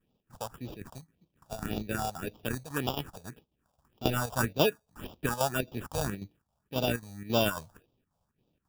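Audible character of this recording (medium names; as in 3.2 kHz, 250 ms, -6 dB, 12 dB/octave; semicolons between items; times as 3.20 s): chopped level 3.7 Hz, depth 60%, duty 75%; aliases and images of a low sample rate 2.1 kHz, jitter 0%; phasing stages 4, 1.8 Hz, lowest notch 310–1700 Hz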